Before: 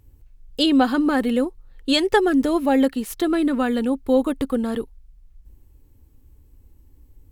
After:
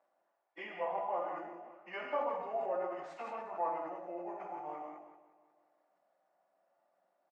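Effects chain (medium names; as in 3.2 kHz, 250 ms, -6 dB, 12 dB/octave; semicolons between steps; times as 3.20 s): frequency-domain pitch shifter -7 st; low-pass 1.4 kHz 12 dB/octave; compression 6:1, threshold -31 dBFS, peak gain reduction 17 dB; ladder high-pass 610 Hz, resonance 60%; on a send: feedback delay 181 ms, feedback 59%, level -16 dB; on the sum: gated-style reverb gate 220 ms flat, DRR -0.5 dB; decay stretcher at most 51 dB/s; trim +8 dB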